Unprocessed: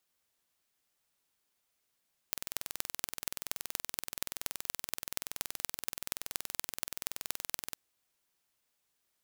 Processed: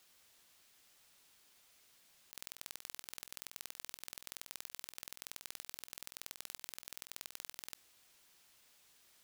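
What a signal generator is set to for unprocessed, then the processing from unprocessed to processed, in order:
pulse train 21.1 per s, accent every 5, -4 dBFS 5.45 s
peaking EQ 3.7 kHz +4 dB 2.4 oct; compressor with a negative ratio -49 dBFS, ratio -1

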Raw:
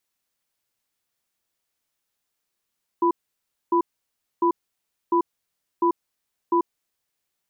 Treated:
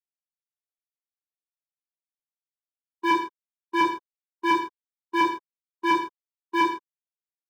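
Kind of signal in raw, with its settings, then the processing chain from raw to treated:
cadence 344 Hz, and 992 Hz, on 0.09 s, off 0.61 s, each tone -19 dBFS 3.72 s
gate -18 dBFS, range -43 dB; waveshaping leveller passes 3; gated-style reverb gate 190 ms falling, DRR -5.5 dB

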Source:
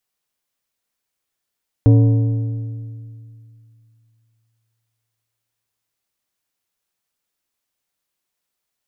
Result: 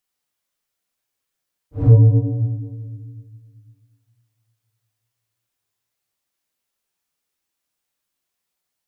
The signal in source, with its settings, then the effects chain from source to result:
metal hit plate, length 5.05 s, lowest mode 113 Hz, modes 8, decay 2.71 s, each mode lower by 7.5 dB, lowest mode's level -6.5 dB
phase randomisation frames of 200 ms

